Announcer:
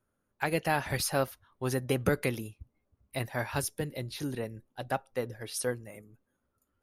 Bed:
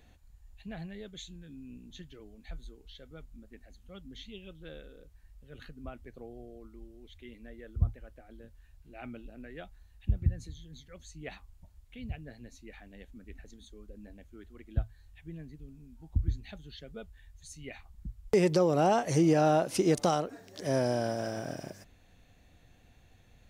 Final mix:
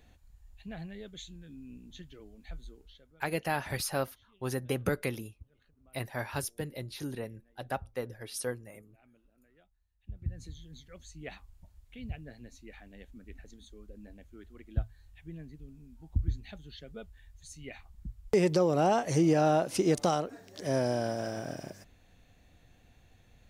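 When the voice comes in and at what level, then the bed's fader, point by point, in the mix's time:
2.80 s, -3.0 dB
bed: 2.78 s -0.5 dB
3.34 s -21 dB
9.95 s -21 dB
10.45 s -0.5 dB

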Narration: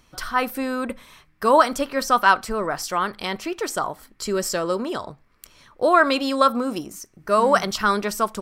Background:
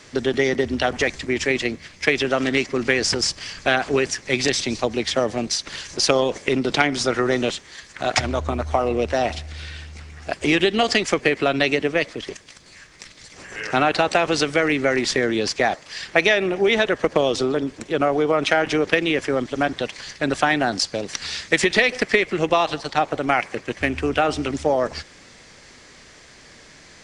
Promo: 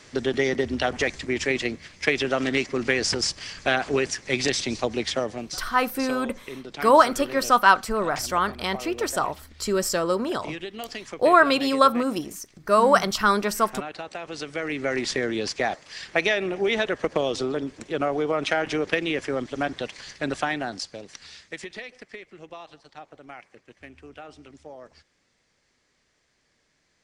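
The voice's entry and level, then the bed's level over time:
5.40 s, 0.0 dB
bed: 5.07 s -3.5 dB
5.87 s -17 dB
14.18 s -17 dB
14.96 s -5.5 dB
20.26 s -5.5 dB
22.03 s -23 dB

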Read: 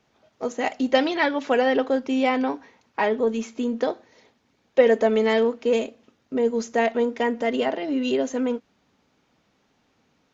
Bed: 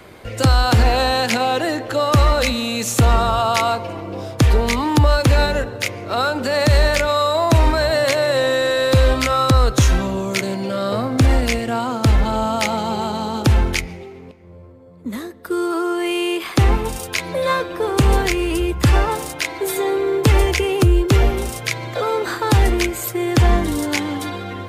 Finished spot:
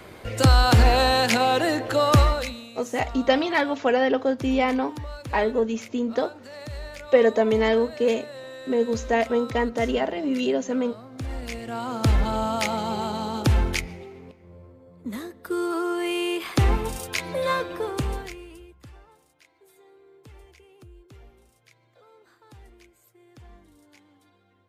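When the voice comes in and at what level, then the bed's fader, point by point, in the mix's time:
2.35 s, -0.5 dB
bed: 2.17 s -2 dB
2.73 s -22 dB
11.07 s -22 dB
12.01 s -5.5 dB
17.74 s -5.5 dB
18.97 s -35 dB

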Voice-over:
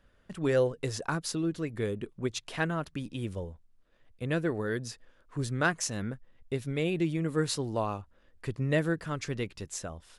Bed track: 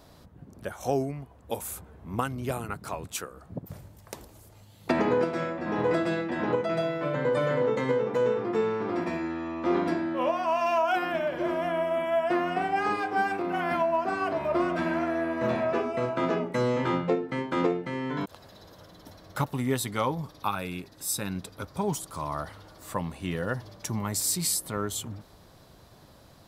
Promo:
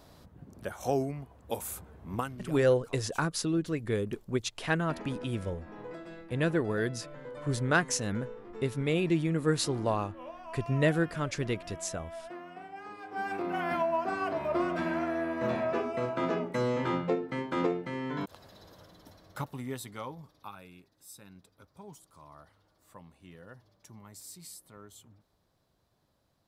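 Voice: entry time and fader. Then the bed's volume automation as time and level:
2.10 s, +1.5 dB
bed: 2.13 s -2 dB
2.63 s -18 dB
12.95 s -18 dB
13.37 s -3.5 dB
18.73 s -3.5 dB
21.08 s -20 dB

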